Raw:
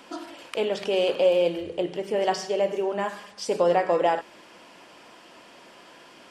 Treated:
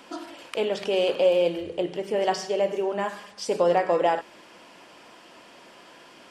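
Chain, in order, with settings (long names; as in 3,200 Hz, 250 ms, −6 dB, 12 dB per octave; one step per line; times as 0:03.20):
hard clipping −10.5 dBFS, distortion −48 dB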